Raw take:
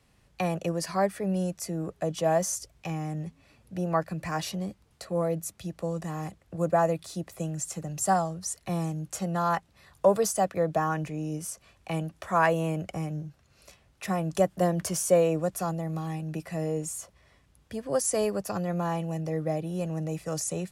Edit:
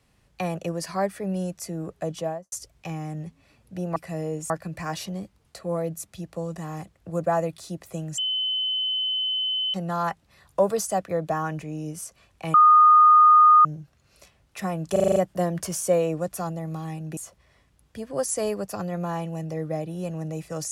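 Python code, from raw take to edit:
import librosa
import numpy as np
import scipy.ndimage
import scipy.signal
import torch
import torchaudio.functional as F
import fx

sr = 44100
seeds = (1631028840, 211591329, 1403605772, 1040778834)

y = fx.studio_fade_out(x, sr, start_s=2.11, length_s=0.41)
y = fx.edit(y, sr, fx.bleep(start_s=7.64, length_s=1.56, hz=3040.0, db=-23.0),
    fx.bleep(start_s=12.0, length_s=1.11, hz=1230.0, db=-10.5),
    fx.stutter(start_s=14.38, slice_s=0.04, count=7),
    fx.move(start_s=16.39, length_s=0.54, to_s=3.96), tone=tone)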